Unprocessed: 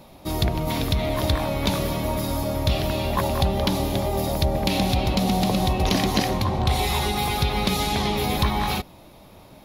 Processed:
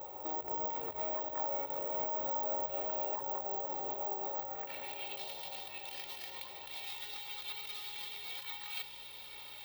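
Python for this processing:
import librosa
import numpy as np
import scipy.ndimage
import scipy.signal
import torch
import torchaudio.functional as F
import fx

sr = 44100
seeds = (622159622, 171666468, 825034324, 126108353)

p1 = fx.tracing_dist(x, sr, depth_ms=0.28)
p2 = fx.highpass(p1, sr, hz=210.0, slope=6)
p3 = fx.peak_eq(p2, sr, hz=13000.0, db=10.0, octaves=0.28)
p4 = p3 + 0.72 * np.pad(p3, (int(2.2 * sr / 1000.0), 0))[:len(p3)]
p5 = fx.over_compress(p4, sr, threshold_db=-33.0, ratio=-1.0)
p6 = fx.filter_sweep_bandpass(p5, sr, from_hz=750.0, to_hz=3200.0, start_s=4.15, end_s=5.15, q=1.6)
p7 = fx.add_hum(p6, sr, base_hz=60, snr_db=26)
p8 = p7 + fx.echo_diffused(p7, sr, ms=1000, feedback_pct=43, wet_db=-9.0, dry=0)
p9 = (np.kron(p8[::2], np.eye(2)[0]) * 2)[:len(p8)]
y = p9 * 10.0 ** (-4.5 / 20.0)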